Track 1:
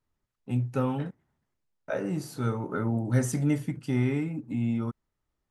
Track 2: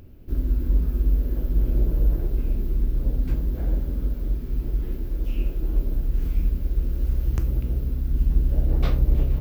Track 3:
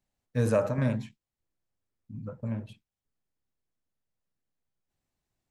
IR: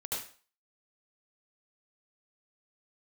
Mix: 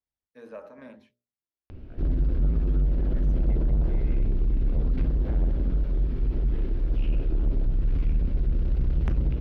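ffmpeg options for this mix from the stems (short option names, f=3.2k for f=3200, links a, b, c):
-filter_complex "[0:a]lowpass=3.5k,aeval=exprs='val(0)*sin(2*PI*54*n/s)':c=same,volume=-16.5dB[a];[1:a]lowpass=3.8k,asoftclip=type=tanh:threshold=-23.5dB,adelay=1700,volume=1.5dB[b];[2:a]acrossover=split=4200[c][d];[d]acompressor=threshold=-59dB:ratio=4:attack=1:release=60[e];[c][e]amix=inputs=2:normalize=0,highpass=f=250:w=0.5412,highpass=f=250:w=1.3066,volume=-15dB,asplit=2[f][g];[g]apad=whole_len=242604[h];[a][h]sidechaincompress=threshold=-59dB:ratio=8:attack=16:release=1490[i];[i][b][f]amix=inputs=3:normalize=0,equalizer=f=7.4k:t=o:w=0.32:g=-13,bandreject=f=60:t=h:w=6,bandreject=f=120:t=h:w=6,bandreject=f=180:t=h:w=6,bandreject=f=240:t=h:w=6,bandreject=f=300:t=h:w=6,bandreject=f=360:t=h:w=6,bandreject=f=420:t=h:w=6,bandreject=f=480:t=h:w=6,bandreject=f=540:t=h:w=6,bandreject=f=600:t=h:w=6,dynaudnorm=f=550:g=3:m=3.5dB"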